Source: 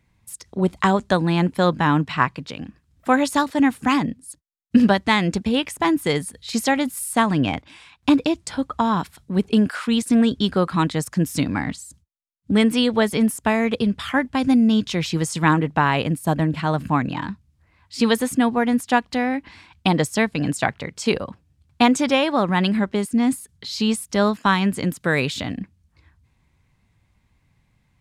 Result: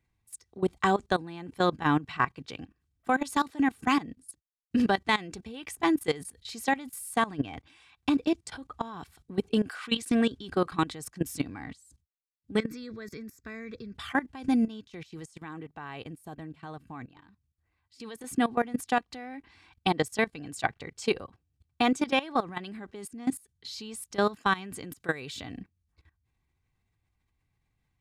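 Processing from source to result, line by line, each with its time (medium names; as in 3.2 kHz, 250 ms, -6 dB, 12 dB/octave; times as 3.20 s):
9.78–10.40 s: peaking EQ 2.5 kHz +8 dB -> +1.5 dB 2.5 oct
12.59–13.95 s: static phaser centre 3 kHz, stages 6
14.68–18.24 s: gain -9.5 dB
whole clip: comb 2.6 ms, depth 38%; level held to a coarse grid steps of 18 dB; trim -4.5 dB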